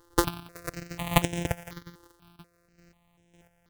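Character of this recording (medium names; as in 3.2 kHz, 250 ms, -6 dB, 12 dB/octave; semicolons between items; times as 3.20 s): a buzz of ramps at a fixed pitch in blocks of 256 samples; chopped level 1.8 Hz, depth 60%, duty 25%; notches that jump at a steady rate 4.1 Hz 650–4500 Hz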